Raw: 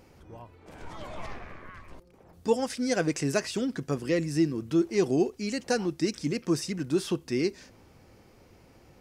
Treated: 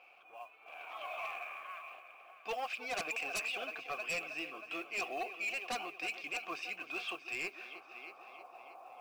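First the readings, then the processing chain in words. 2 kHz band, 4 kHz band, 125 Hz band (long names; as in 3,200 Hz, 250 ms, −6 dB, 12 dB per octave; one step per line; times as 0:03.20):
+1.0 dB, −5.0 dB, −31.5 dB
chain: formant filter a
band-pass filter sweep 2,400 Hz → 970 Hz, 0:07.29–0:08.43
echo machine with several playback heads 316 ms, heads first and second, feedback 46%, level −16 dB
in parallel at −5 dB: sine wavefolder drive 16 dB, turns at −35 dBFS
on the sum: noise that follows the level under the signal 27 dB
level +5.5 dB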